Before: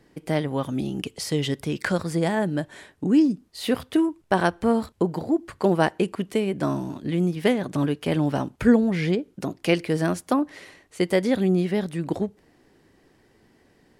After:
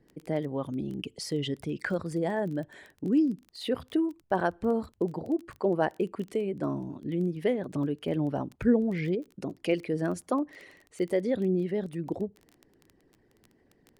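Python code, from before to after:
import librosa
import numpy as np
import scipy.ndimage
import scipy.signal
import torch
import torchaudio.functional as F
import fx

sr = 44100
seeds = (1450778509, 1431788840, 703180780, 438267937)

y = fx.envelope_sharpen(x, sr, power=1.5)
y = fx.dmg_crackle(y, sr, seeds[0], per_s=16.0, level_db=-31.0)
y = F.gain(torch.from_numpy(y), -6.0).numpy()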